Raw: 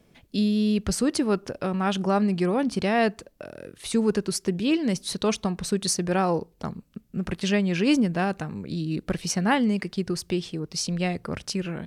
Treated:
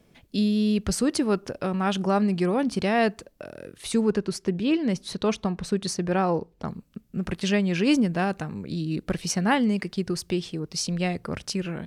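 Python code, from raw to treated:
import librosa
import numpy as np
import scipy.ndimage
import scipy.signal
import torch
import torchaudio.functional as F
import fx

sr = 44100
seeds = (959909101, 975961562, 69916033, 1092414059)

y = fx.lowpass(x, sr, hz=3300.0, slope=6, at=(4.01, 6.68))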